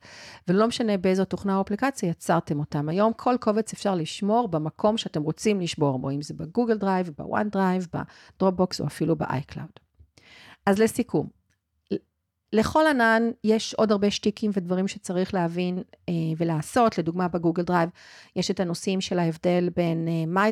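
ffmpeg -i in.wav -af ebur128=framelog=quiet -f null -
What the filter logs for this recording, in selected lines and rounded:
Integrated loudness:
  I:         -25.2 LUFS
  Threshold: -35.5 LUFS
Loudness range:
  LRA:         3.9 LU
  Threshold: -45.6 LUFS
  LRA low:   -27.6 LUFS
  LRA high:  -23.7 LUFS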